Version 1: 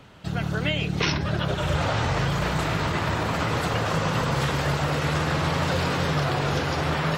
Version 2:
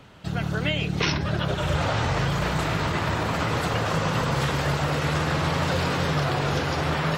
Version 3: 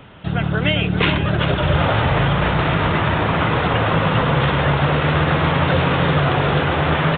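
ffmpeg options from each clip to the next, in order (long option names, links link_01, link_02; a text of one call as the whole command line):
ffmpeg -i in.wav -af anull out.wav
ffmpeg -i in.wav -af "aresample=8000,aresample=44100,aecho=1:1:400:0.355,volume=7dB" out.wav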